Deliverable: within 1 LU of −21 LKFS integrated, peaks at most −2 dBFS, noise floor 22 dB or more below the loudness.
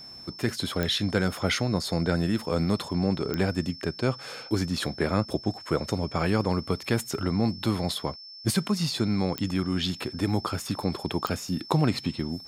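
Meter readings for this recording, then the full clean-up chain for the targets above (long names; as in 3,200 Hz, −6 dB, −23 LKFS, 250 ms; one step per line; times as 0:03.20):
number of clicks 4; interfering tone 5,300 Hz; level of the tone −42 dBFS; integrated loudness −28.0 LKFS; sample peak −9.5 dBFS; target loudness −21.0 LKFS
→ click removal
notch filter 5,300 Hz, Q 30
level +7 dB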